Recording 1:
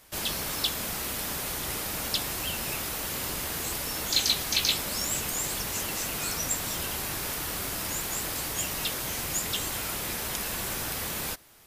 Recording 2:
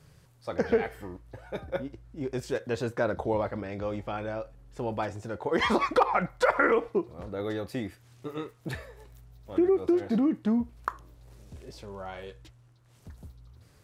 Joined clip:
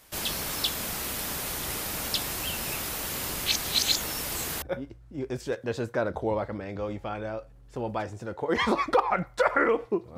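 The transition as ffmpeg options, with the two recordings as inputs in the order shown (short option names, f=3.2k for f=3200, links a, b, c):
-filter_complex "[0:a]apad=whole_dur=10.17,atrim=end=10.17,asplit=2[a][b];[a]atrim=end=3.462[c];[b]atrim=start=3.458:end=4.622,asetpts=PTS-STARTPTS,areverse[d];[1:a]atrim=start=1.648:end=7.2[e];[c][d]acrossfade=d=0.004:c1=hsin:c2=hsin[f];[f][e]acrossfade=d=0.004:c1=hsin:c2=hsin"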